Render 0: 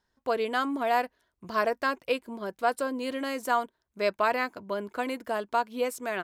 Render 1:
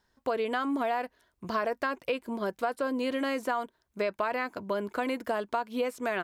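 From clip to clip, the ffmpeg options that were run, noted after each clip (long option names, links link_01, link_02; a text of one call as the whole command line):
ffmpeg -i in.wav -filter_complex "[0:a]acrossover=split=3700[link_01][link_02];[link_02]acompressor=threshold=-50dB:ratio=4:attack=1:release=60[link_03];[link_01][link_03]amix=inputs=2:normalize=0,asplit=2[link_04][link_05];[link_05]alimiter=limit=-22.5dB:level=0:latency=1:release=15,volume=-1dB[link_06];[link_04][link_06]amix=inputs=2:normalize=0,acompressor=threshold=-25dB:ratio=6,volume=-1dB" out.wav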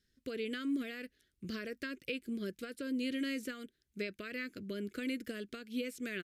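ffmpeg -i in.wav -af "aresample=32000,aresample=44100,asuperstop=centerf=860:order=4:qfactor=0.52,volume=-2.5dB" out.wav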